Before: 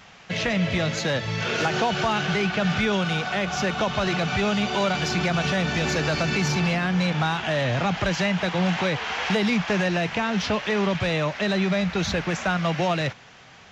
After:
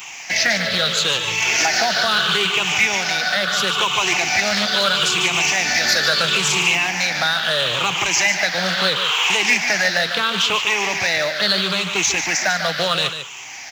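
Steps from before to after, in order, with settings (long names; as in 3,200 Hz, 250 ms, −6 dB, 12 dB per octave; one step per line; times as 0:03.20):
rippled gain that drifts along the octave scale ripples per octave 0.69, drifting −0.75 Hz, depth 13 dB
spectral tilt +4.5 dB per octave
in parallel at +1 dB: downward compressor, threshold −32 dBFS, peak gain reduction 17.5 dB
on the sum: log-companded quantiser 6 bits
on a send: single-tap delay 147 ms −9 dB
on the sum: highs frequency-modulated by the lows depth 0.19 ms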